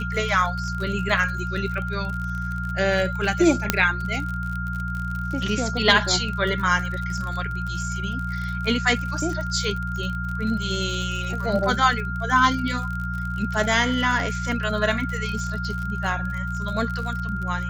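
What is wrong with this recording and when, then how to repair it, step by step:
surface crackle 43 per second −29 dBFS
mains hum 60 Hz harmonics 3 −29 dBFS
whistle 1,400 Hz −30 dBFS
0:03.70: click −1 dBFS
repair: click removal
notch filter 1,400 Hz, Q 30
hum removal 60 Hz, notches 3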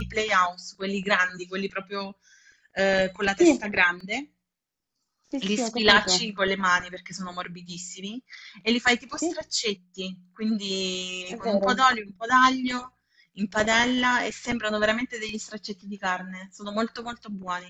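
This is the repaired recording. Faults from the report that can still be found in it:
none of them is left

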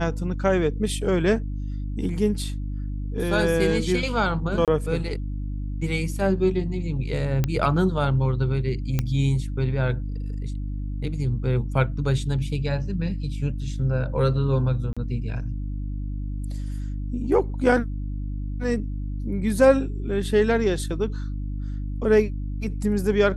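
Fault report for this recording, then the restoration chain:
mains hum 50 Hz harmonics 6 −29 dBFS
0:04.65–0:04.68: drop-out 27 ms
0:07.44: click −10 dBFS
0:08.99: click −10 dBFS
0:14.93–0:14.97: drop-out 36 ms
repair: click removal
hum removal 50 Hz, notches 6
repair the gap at 0:04.65, 27 ms
repair the gap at 0:14.93, 36 ms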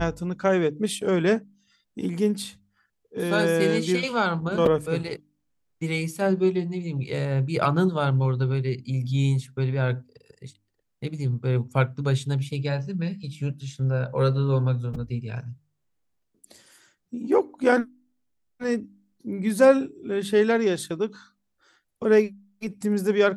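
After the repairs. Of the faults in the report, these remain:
none of them is left

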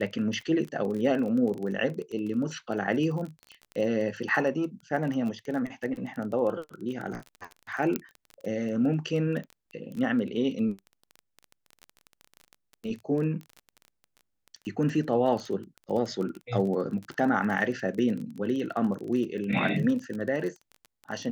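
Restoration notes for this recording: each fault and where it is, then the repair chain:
surface crackle 21 per second −33 dBFS
0:07.96: click −13 dBFS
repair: click removal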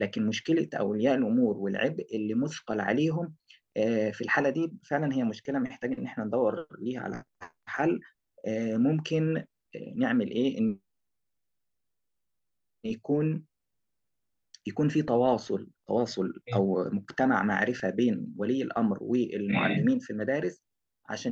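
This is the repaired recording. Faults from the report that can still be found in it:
none of them is left

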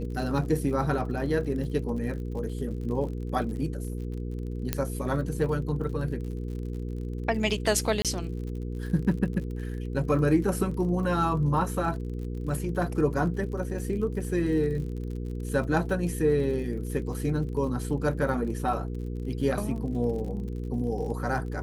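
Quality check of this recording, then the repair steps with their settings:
surface crackle 47 per second −37 dBFS
mains hum 60 Hz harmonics 8 −33 dBFS
0:04.73: click −10 dBFS
0:08.02–0:08.05: drop-out 27 ms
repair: click removal
hum removal 60 Hz, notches 8
repair the gap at 0:08.02, 27 ms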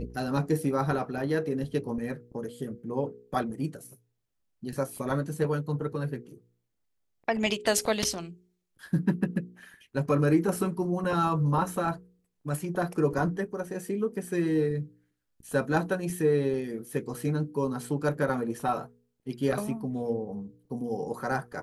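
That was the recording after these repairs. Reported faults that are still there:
0:04.73: click

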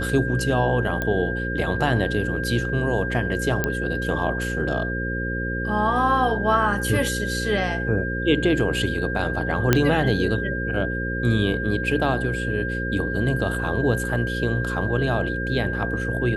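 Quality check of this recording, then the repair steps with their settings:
mains buzz 60 Hz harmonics 9 −28 dBFS
whistle 1,600 Hz −28 dBFS
0:01.02: click −12 dBFS
0:03.64: click −8 dBFS
0:09.73: click −2 dBFS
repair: click removal
hum removal 60 Hz, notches 9
notch filter 1,600 Hz, Q 30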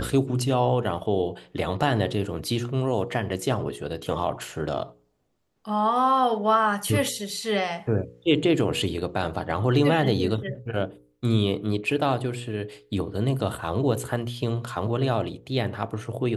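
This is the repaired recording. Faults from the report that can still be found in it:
none of them is left

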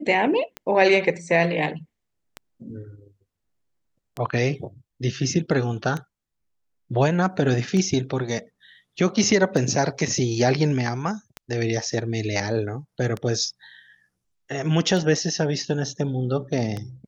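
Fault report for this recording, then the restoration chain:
scratch tick 33 1/3 rpm −16 dBFS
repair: click removal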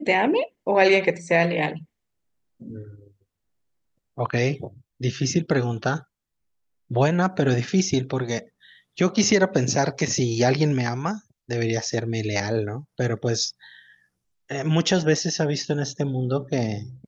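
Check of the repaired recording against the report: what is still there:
none of them is left

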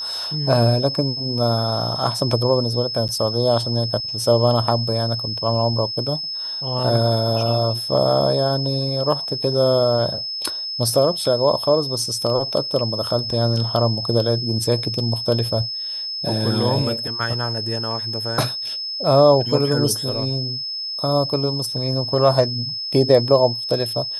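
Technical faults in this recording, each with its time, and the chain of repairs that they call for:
whistle 5,200 Hz −25 dBFS
0:03.08–0:03.09: drop-out 8.6 ms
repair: notch filter 5,200 Hz, Q 30
repair the gap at 0:03.08, 8.6 ms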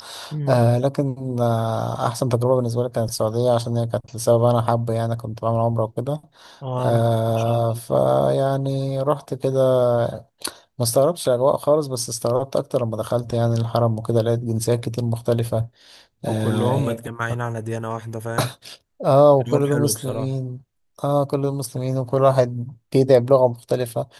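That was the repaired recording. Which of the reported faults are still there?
none of them is left

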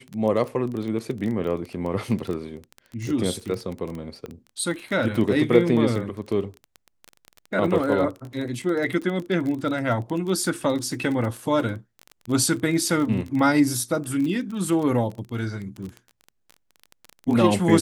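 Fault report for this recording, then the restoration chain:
surface crackle 20 per second −28 dBFS
0:04.26: click −23 dBFS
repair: click removal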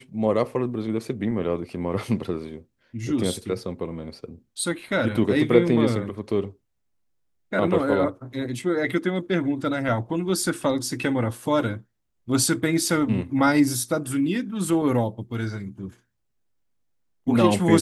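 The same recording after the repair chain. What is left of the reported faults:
0:04.26: click

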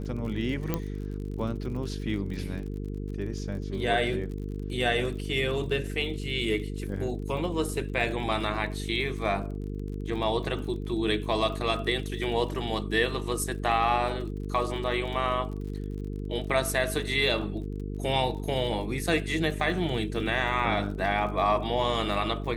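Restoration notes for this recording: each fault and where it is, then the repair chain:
mains buzz 50 Hz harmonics 9 −34 dBFS
surface crackle 47 per second −38 dBFS
0:00.74: click −13 dBFS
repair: click removal
hum removal 50 Hz, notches 9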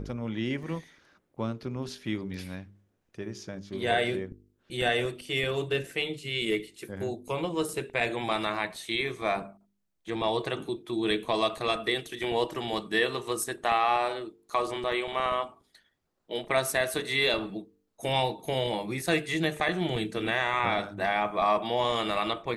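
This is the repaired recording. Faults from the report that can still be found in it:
none of them is left

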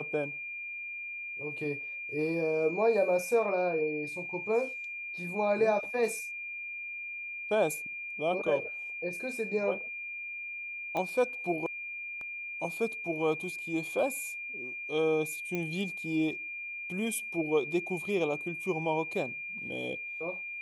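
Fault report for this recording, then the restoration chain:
whistle 2,400 Hz −37 dBFS
0:10.97: click −21 dBFS
0:15.55: click −20 dBFS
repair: click removal
notch filter 2,400 Hz, Q 30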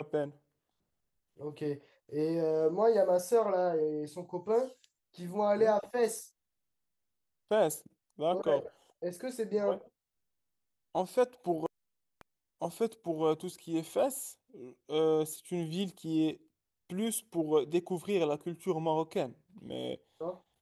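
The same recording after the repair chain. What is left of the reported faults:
none of them is left

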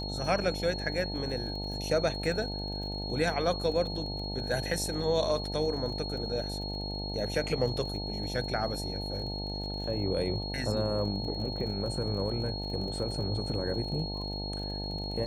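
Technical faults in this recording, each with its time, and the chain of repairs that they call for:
mains buzz 50 Hz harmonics 18 −37 dBFS
surface crackle 38 per second −40 dBFS
whistle 4,300 Hz −38 dBFS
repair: click removal
notch filter 4,300 Hz, Q 30
hum removal 50 Hz, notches 18

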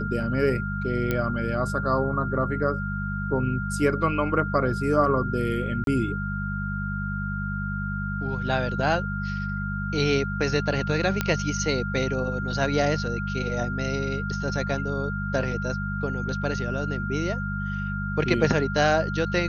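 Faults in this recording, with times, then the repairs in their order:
mains hum 50 Hz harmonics 4 −30 dBFS
whistle 1,400 Hz −32 dBFS
0:01.11: click −12 dBFS
0:05.84–0:05.87: drop-out 32 ms
0:11.21: click −8 dBFS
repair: click removal
notch filter 1,400 Hz, Q 30
hum removal 50 Hz, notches 4
repair the gap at 0:05.84, 32 ms

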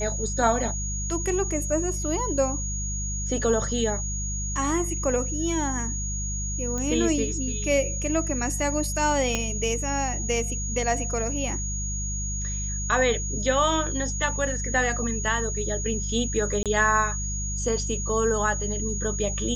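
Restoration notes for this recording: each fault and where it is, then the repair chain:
mains hum 50 Hz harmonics 4 −31 dBFS
whistle 6,700 Hz −31 dBFS
0:06.78: click −18 dBFS
0:09.35: click −10 dBFS
0:16.63–0:16.66: drop-out 27 ms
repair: click removal
hum removal 50 Hz, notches 4
notch filter 6,700 Hz, Q 30
repair the gap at 0:16.63, 27 ms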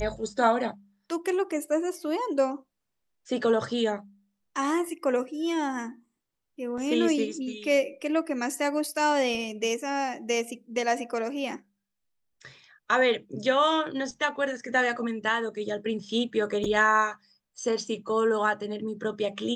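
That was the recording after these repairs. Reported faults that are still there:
0:09.35: click

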